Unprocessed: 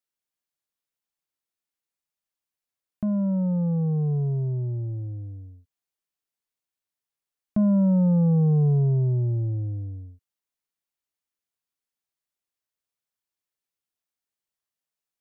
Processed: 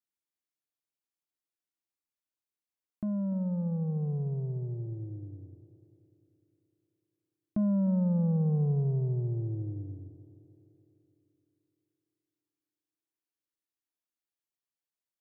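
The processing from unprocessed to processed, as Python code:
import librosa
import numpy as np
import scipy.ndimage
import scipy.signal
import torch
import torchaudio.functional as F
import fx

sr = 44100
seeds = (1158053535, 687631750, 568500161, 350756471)

y = fx.peak_eq(x, sr, hz=310.0, db=8.0, octaves=0.41)
y = fx.echo_tape(y, sr, ms=299, feedback_pct=65, wet_db=-11.5, lp_hz=1000.0, drive_db=13.0, wow_cents=39)
y = y * librosa.db_to_amplitude(-8.0)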